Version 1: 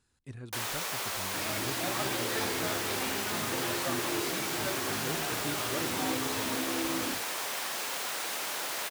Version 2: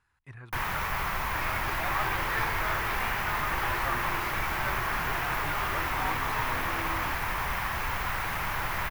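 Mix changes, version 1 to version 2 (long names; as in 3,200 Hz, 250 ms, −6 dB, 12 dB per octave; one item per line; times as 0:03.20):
first sound: remove high-pass filter 610 Hz 12 dB per octave
master: add graphic EQ with 10 bands 250 Hz −10 dB, 500 Hz −6 dB, 1,000 Hz +9 dB, 2,000 Hz +7 dB, 4,000 Hz −6 dB, 8,000 Hz −12 dB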